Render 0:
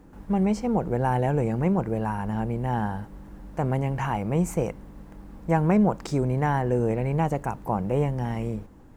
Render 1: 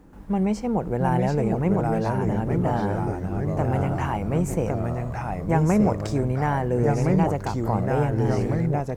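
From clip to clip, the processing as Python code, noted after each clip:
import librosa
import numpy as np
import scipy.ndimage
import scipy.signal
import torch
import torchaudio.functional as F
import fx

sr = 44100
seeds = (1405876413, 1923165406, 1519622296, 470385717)

y = fx.echo_pitch(x, sr, ms=668, semitones=-2, count=3, db_per_echo=-3.0)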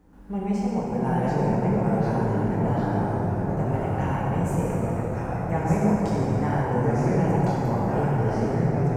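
y = fx.rev_plate(x, sr, seeds[0], rt60_s=4.3, hf_ratio=0.45, predelay_ms=0, drr_db=-6.5)
y = y * 10.0 ** (-8.5 / 20.0)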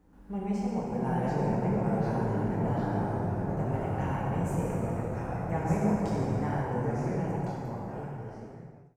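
y = fx.fade_out_tail(x, sr, length_s=2.71)
y = y * 10.0 ** (-5.5 / 20.0)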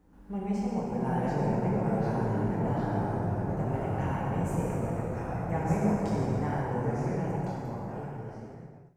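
y = fx.reverse_delay(x, sr, ms=114, wet_db=-12.5)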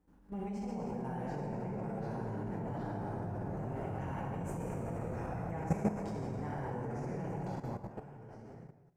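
y = fx.level_steps(x, sr, step_db=12)
y = y * 10.0 ** (-2.5 / 20.0)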